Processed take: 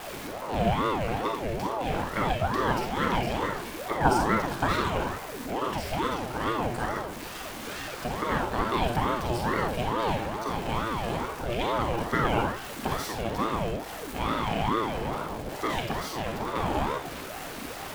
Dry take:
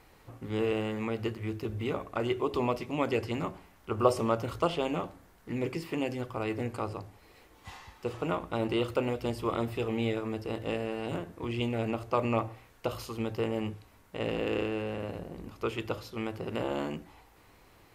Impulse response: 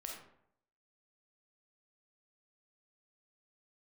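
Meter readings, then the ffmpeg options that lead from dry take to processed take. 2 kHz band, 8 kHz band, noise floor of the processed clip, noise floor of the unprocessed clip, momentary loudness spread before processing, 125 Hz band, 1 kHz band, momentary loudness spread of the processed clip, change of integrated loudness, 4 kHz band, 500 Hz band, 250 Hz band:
+8.5 dB, +11.0 dB, -39 dBFS, -59 dBFS, 11 LU, +3.5 dB, +9.5 dB, 9 LU, +3.5 dB, +6.5 dB, +1.0 dB, +1.5 dB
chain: -filter_complex "[0:a]aeval=exprs='val(0)+0.5*0.0168*sgn(val(0))':c=same[a];[1:a]atrim=start_sample=2205,afade=t=out:st=0.2:d=0.01,atrim=end_sample=9261[b];[a][b]afir=irnorm=-1:irlink=0,aeval=exprs='val(0)*sin(2*PI*510*n/s+510*0.55/2.3*sin(2*PI*2.3*n/s))':c=same,volume=8dB"

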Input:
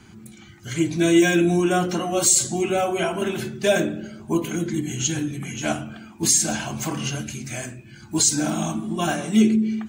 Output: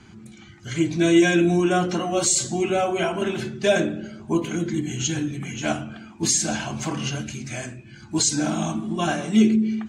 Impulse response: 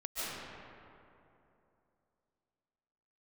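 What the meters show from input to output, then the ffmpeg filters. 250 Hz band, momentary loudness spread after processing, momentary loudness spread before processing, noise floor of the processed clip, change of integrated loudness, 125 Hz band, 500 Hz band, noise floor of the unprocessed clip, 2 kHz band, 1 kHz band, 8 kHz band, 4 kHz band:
0.0 dB, 14 LU, 14 LU, -46 dBFS, -1.0 dB, 0.0 dB, 0.0 dB, -46 dBFS, 0.0 dB, 0.0 dB, -3.5 dB, -0.5 dB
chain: -af "lowpass=6.9k"

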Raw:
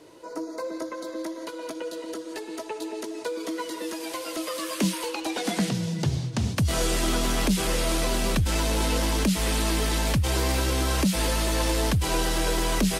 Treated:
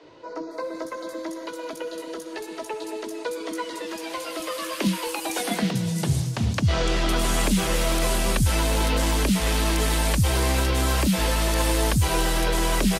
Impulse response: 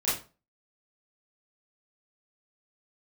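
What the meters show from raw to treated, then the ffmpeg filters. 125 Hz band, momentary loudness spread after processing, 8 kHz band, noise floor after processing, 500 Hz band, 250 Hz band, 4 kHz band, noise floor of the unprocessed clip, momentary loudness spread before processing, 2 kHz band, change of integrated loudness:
+3.0 dB, 12 LU, +1.5 dB, -37 dBFS, +1.5 dB, +1.0 dB, +1.5 dB, -38 dBFS, 11 LU, +3.0 dB, +2.0 dB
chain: -filter_complex "[0:a]acrossover=split=310|5300[a][b][c];[a]adelay=30[d];[c]adelay=510[e];[d][b][e]amix=inputs=3:normalize=0,volume=3dB"

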